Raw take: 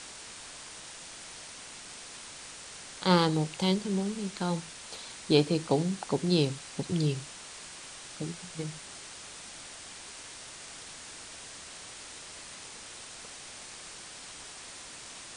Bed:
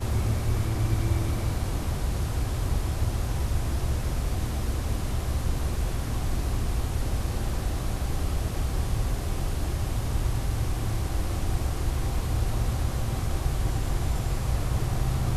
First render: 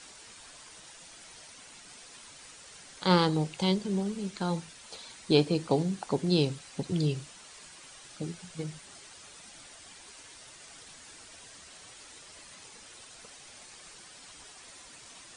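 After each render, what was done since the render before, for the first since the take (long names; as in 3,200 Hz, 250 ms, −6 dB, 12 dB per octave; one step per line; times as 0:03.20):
broadband denoise 8 dB, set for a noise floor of −46 dBFS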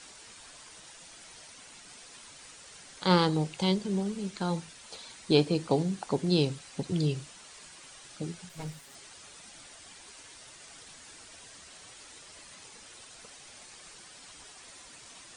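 0:08.49–0:08.95: lower of the sound and its delayed copy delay 7.3 ms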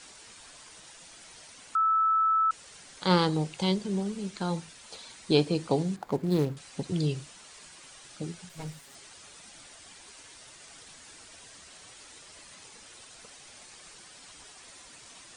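0:01.75–0:02.51: beep over 1,310 Hz −21 dBFS
0:05.96–0:06.57: running median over 15 samples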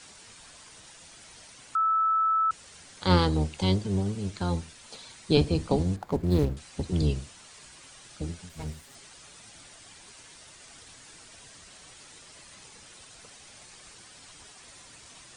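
sub-octave generator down 1 octave, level +1 dB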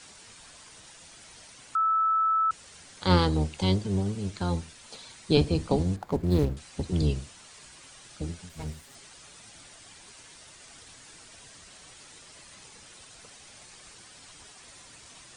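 no processing that can be heard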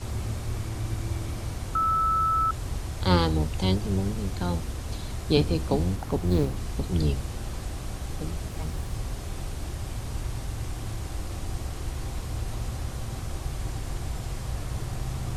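mix in bed −5.5 dB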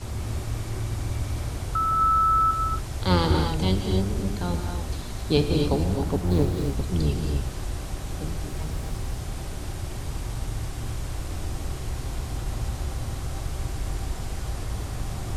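reverb whose tail is shaped and stops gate 300 ms rising, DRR 3 dB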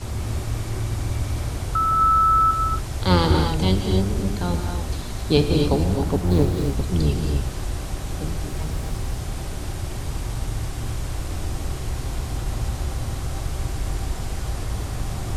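level +3.5 dB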